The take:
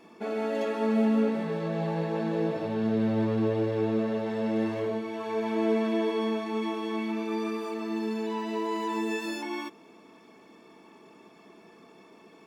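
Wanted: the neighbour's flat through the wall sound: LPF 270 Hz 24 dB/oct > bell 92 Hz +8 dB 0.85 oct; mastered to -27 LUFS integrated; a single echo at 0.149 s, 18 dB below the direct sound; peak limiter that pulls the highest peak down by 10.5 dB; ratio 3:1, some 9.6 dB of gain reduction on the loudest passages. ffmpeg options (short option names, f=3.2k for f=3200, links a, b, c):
-af "acompressor=threshold=-34dB:ratio=3,alimiter=level_in=11dB:limit=-24dB:level=0:latency=1,volume=-11dB,lowpass=f=270:w=0.5412,lowpass=f=270:w=1.3066,equalizer=f=92:t=o:w=0.85:g=8,aecho=1:1:149:0.126,volume=19dB"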